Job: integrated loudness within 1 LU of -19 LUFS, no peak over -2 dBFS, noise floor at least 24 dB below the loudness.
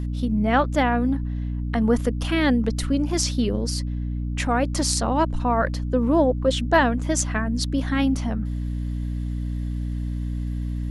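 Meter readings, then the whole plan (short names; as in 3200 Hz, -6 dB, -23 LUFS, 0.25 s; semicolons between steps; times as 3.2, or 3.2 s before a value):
hum 60 Hz; harmonics up to 300 Hz; hum level -24 dBFS; loudness -23.5 LUFS; peak -5.0 dBFS; loudness target -19.0 LUFS
-> notches 60/120/180/240/300 Hz; gain +4.5 dB; limiter -2 dBFS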